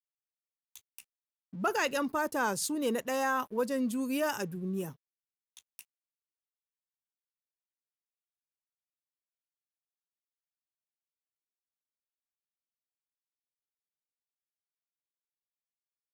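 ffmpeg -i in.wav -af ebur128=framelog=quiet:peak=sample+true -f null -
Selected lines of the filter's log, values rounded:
Integrated loudness:
  I:         -31.9 LUFS
  Threshold: -43.5 LUFS
Loudness range:
  LRA:        12.2 LU
  Threshold: -54.6 LUFS
  LRA low:   -43.6 LUFS
  LRA high:  -31.4 LUFS
Sample peak:
  Peak:      -18.9 dBFS
True peak:
  Peak:      -18.8 dBFS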